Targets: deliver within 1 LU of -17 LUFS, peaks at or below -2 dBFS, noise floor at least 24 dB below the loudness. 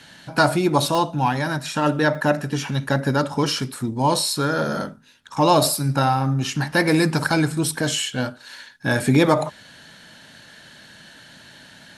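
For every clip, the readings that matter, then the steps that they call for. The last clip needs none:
dropouts 2; longest dropout 2.1 ms; loudness -21.0 LUFS; peak -3.5 dBFS; loudness target -17.0 LUFS
-> interpolate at 0.95/2.15, 2.1 ms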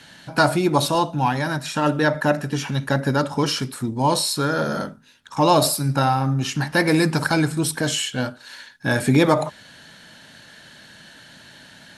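dropouts 0; loudness -21.0 LUFS; peak -3.5 dBFS; loudness target -17.0 LUFS
-> gain +4 dB; limiter -2 dBFS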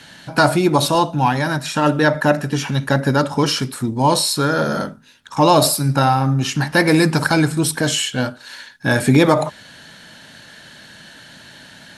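loudness -17.0 LUFS; peak -2.0 dBFS; noise floor -43 dBFS

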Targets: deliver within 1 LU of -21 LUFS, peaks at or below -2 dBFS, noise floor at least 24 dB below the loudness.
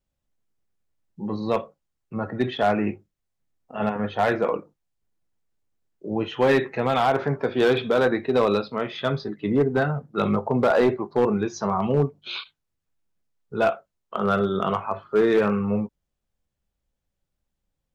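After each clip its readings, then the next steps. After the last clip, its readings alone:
clipped 0.7%; flat tops at -13.0 dBFS; loudness -24.0 LUFS; peak -13.0 dBFS; loudness target -21.0 LUFS
-> clip repair -13 dBFS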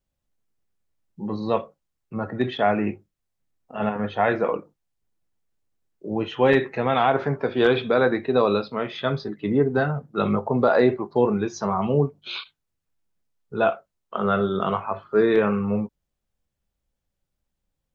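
clipped 0.0%; loudness -23.0 LUFS; peak -5.0 dBFS; loudness target -21.0 LUFS
-> gain +2 dB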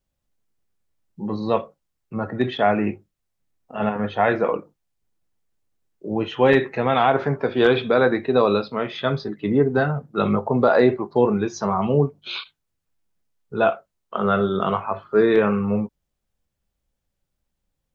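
loudness -21.0 LUFS; peak -3.0 dBFS; noise floor -79 dBFS

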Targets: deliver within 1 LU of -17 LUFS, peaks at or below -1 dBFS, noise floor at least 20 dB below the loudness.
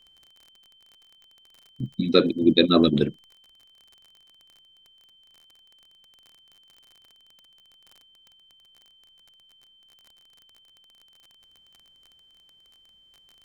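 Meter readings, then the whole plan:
ticks 30/s; steady tone 3100 Hz; tone level -55 dBFS; loudness -21.0 LUFS; peak -2.0 dBFS; loudness target -17.0 LUFS
-> de-click; notch 3100 Hz, Q 30; gain +4 dB; limiter -1 dBFS

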